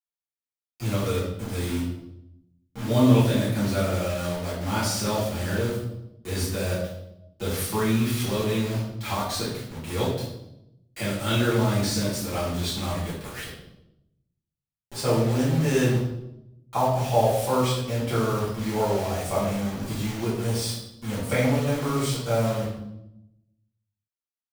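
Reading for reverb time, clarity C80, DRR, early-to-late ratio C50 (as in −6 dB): 0.85 s, 6.0 dB, −9.5 dB, 2.0 dB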